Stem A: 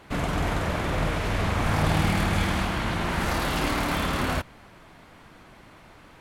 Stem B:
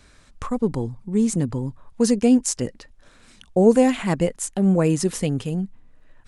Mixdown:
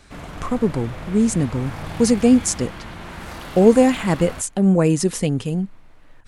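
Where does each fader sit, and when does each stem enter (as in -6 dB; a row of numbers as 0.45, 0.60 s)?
-8.5, +2.5 dB; 0.00, 0.00 s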